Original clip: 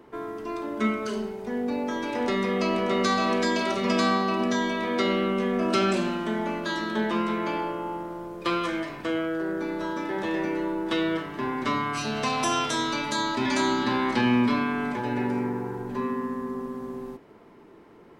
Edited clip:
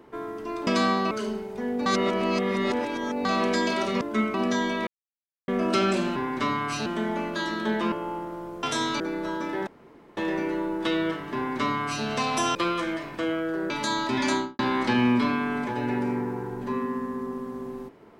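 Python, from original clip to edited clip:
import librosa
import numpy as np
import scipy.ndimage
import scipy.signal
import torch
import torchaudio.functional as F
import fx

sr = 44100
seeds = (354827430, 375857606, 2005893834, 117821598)

y = fx.studio_fade_out(x, sr, start_s=13.58, length_s=0.29)
y = fx.edit(y, sr, fx.swap(start_s=0.67, length_s=0.33, other_s=3.9, other_length_s=0.44),
    fx.reverse_span(start_s=1.75, length_s=1.39),
    fx.silence(start_s=4.87, length_s=0.61),
    fx.cut(start_s=7.22, length_s=0.48),
    fx.swap(start_s=8.41, length_s=1.15, other_s=12.61, other_length_s=0.37),
    fx.insert_room_tone(at_s=10.23, length_s=0.5),
    fx.duplicate(start_s=11.41, length_s=0.7, to_s=6.16), tone=tone)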